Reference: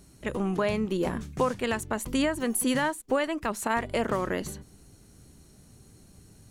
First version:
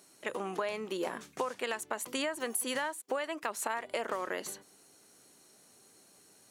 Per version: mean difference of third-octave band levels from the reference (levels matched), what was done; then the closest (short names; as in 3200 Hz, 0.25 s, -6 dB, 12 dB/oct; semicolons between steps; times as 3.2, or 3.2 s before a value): 6.5 dB: HPF 480 Hz 12 dB/oct; compressor 6:1, threshold -30 dBFS, peak gain reduction 8.5 dB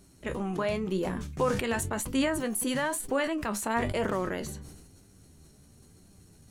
2.5 dB: flange 0.98 Hz, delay 9.9 ms, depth 4.7 ms, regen +53%; sustainer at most 43 dB/s; gain +1 dB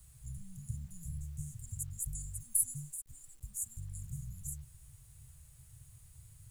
15.0 dB: Chebyshev band-stop 140–7000 Hz, order 5; bit-crush 11-bit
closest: second